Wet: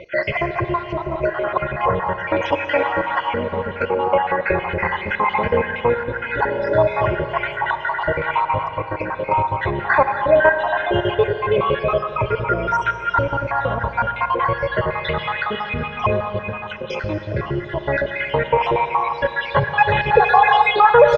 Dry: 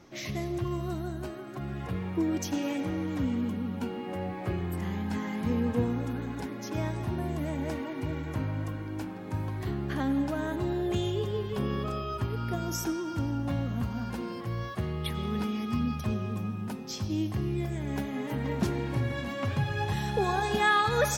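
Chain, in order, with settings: random spectral dropouts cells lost 65%; bell 78 Hz -5.5 dB 1.3 oct; in parallel at +1 dB: compressor, threshold -40 dBFS, peak gain reduction 17 dB; on the sum: LPF 2600 Hz 24 dB/oct; resonant low shelf 430 Hz -11.5 dB, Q 1.5; comb 2 ms, depth 57%; on a send at -8.5 dB: reverb RT60 3.4 s, pre-delay 34 ms; on the sum: maximiser +19.5 dB; gain -1 dB

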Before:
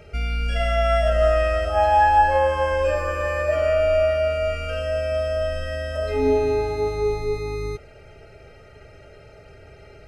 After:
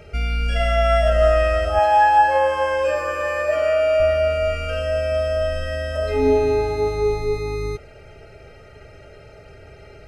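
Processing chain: 1.79–4 HPF 350 Hz 6 dB/oct; gain +2.5 dB

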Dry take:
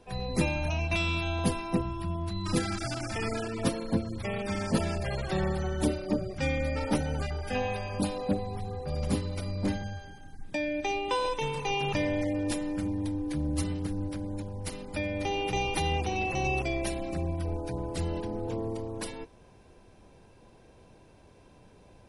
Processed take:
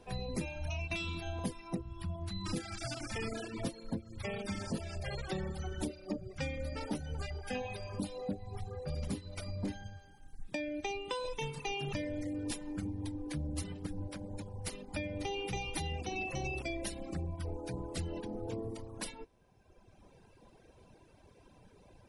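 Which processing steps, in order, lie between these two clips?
reverb removal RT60 1.6 s; dynamic EQ 1100 Hz, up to -5 dB, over -46 dBFS, Q 0.98; compressor 12:1, threshold -32 dBFS, peak gain reduction 11.5 dB; gain -1 dB

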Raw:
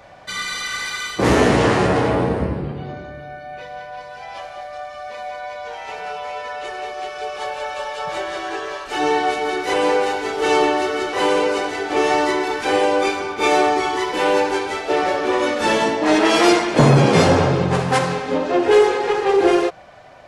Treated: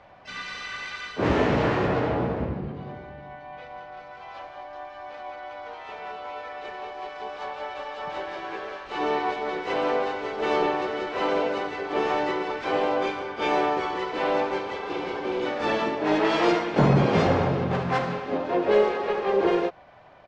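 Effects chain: spectral repair 14.69–15.43, 390–1900 Hz before; harmoniser -12 st -18 dB, +5 st -7 dB, +7 st -14 dB; air absorption 180 m; gain -7.5 dB

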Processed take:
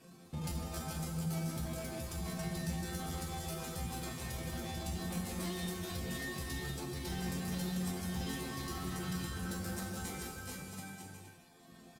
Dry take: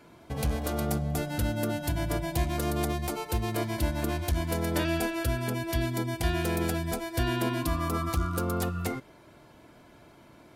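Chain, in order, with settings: CVSD 64 kbps; bouncing-ball echo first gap 0.38 s, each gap 0.7×, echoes 5; soft clip -31 dBFS, distortion -8 dB; reverb removal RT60 1.5 s; varispeed +10%; tone controls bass +13 dB, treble +11 dB; resonator bank F3 major, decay 0.35 s; tempo 0.8×; HPF 96 Hz 6 dB/oct; high shelf 7900 Hz -5 dB; non-linear reverb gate 0.3 s flat, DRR 3 dB; gain +10.5 dB

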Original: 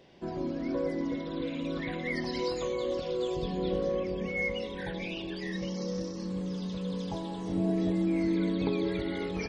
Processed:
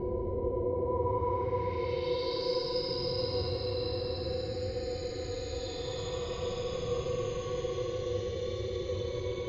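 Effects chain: octaver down 2 oct, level 0 dB; chorus voices 4, 0.28 Hz, delay 23 ms, depth 1.3 ms; Paulstretch 28×, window 0.05 s, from 2.4; low-pass sweep 600 Hz -> 5000 Hz, 0.7–2.5; gain -2.5 dB

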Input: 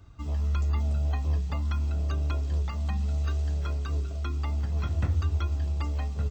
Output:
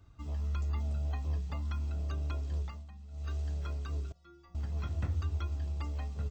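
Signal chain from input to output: 2.62–3.34 dip -14 dB, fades 0.24 s; 4.12–4.55 metallic resonator 170 Hz, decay 0.5 s, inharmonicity 0.008; gain -7 dB

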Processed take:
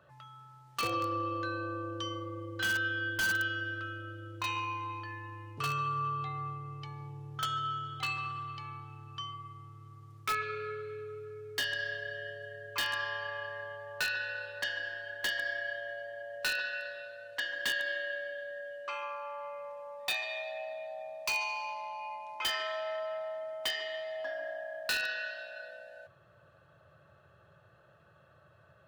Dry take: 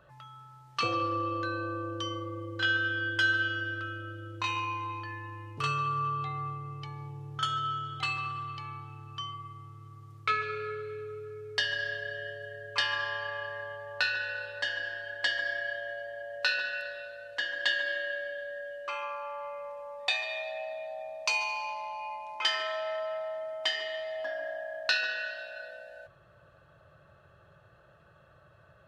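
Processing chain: HPF 73 Hz 24 dB/oct; in parallel at -4.5 dB: wrapped overs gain 21.5 dB; on the sum: gain -6.5 dB

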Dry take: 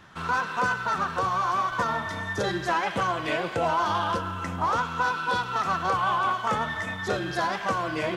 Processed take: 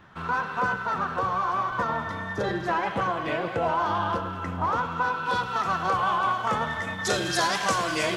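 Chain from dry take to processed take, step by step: bell 8400 Hz -10.5 dB 2.3 oct, from 5.26 s -2 dB, from 7.05 s +15 dB; echo with dull and thin repeats by turns 0.1 s, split 1000 Hz, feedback 71%, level -10 dB

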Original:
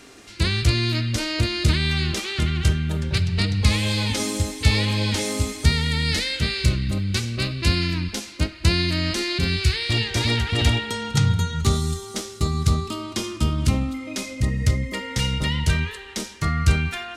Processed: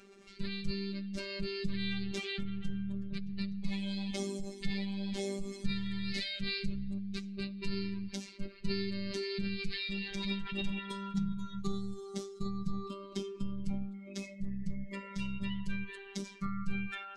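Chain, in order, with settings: spectral contrast raised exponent 1.7; robotiser 197 Hz; gain -8.5 dB

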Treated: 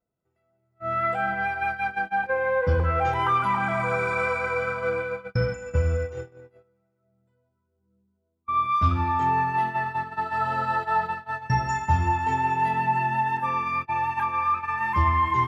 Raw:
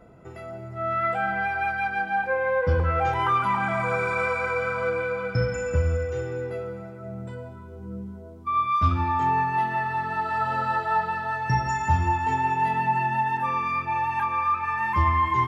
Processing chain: crackle 130/s -53 dBFS; gate -27 dBFS, range -34 dB

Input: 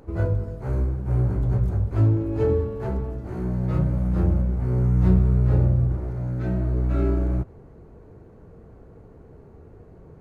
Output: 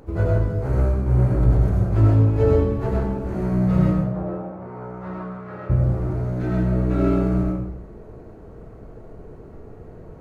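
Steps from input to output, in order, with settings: 3.91–5.69 band-pass 620 Hz -> 1600 Hz, Q 1.5; digital reverb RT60 0.76 s, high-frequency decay 0.9×, pre-delay 50 ms, DRR -2.5 dB; gain +2.5 dB

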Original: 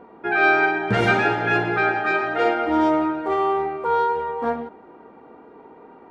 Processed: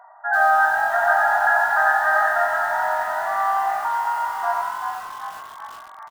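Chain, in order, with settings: treble ducked by the level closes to 1500 Hz, closed at -15.5 dBFS; FFT band-pass 600–2000 Hz; 2.44–4.07 compressor 6:1, threshold -25 dBFS, peak gain reduction 6.5 dB; loudest bins only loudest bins 64; frequency-shifting echo 0.385 s, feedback 61%, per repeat +47 Hz, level -7 dB; lo-fi delay 92 ms, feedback 35%, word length 7-bit, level -4 dB; gain +3 dB

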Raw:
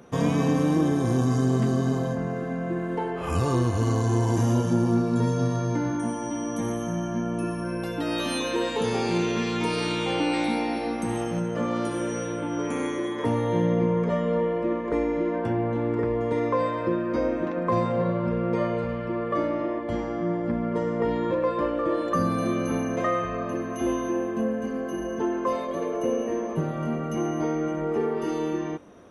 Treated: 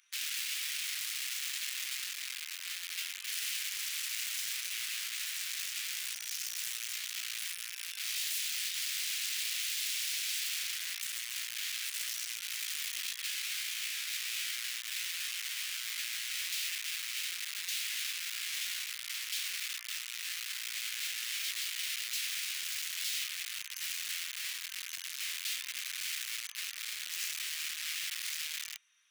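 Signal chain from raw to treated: wrapped overs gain 25 dB; inverse Chebyshev high-pass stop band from 370 Hz, stop band 80 dB; gain -3.5 dB

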